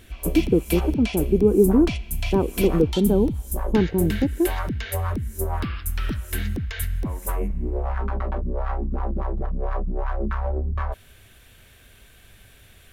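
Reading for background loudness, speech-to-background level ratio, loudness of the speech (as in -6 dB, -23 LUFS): -28.5 LUFS, 7.0 dB, -21.5 LUFS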